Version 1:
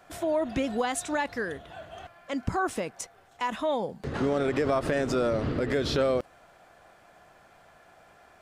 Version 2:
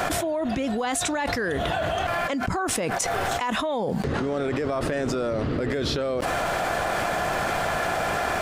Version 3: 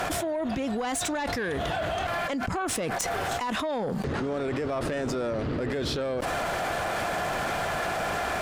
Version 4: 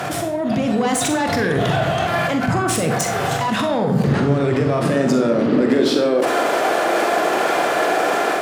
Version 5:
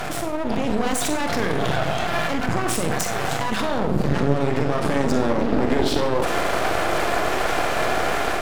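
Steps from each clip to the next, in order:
envelope flattener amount 100%; level −3 dB
harmonic generator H 2 −12 dB, 3 −8 dB, 5 −13 dB, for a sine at −10 dBFS; level −1 dB
high-pass filter sweep 130 Hz → 340 Hz, 0:04.38–0:06.24; automatic gain control gain up to 4.5 dB; convolution reverb RT60 0.80 s, pre-delay 43 ms, DRR 3.5 dB; level +3 dB
half-wave rectification

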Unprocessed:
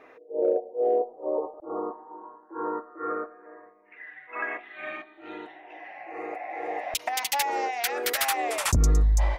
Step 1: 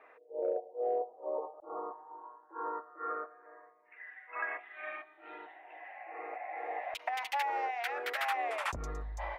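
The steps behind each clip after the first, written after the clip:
three-way crossover with the lows and the highs turned down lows −17 dB, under 510 Hz, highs −20 dB, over 2,900 Hz
level −4 dB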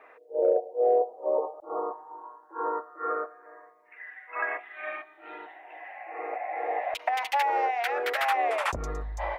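dynamic equaliser 510 Hz, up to +5 dB, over −46 dBFS, Q 1
level +5.5 dB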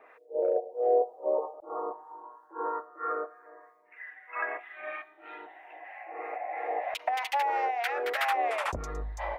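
two-band tremolo in antiphase 3.1 Hz, depth 50%, crossover 880 Hz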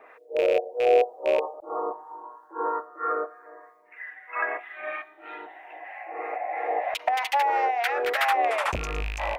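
loose part that buzzes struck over −42 dBFS, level −26 dBFS
level +5 dB

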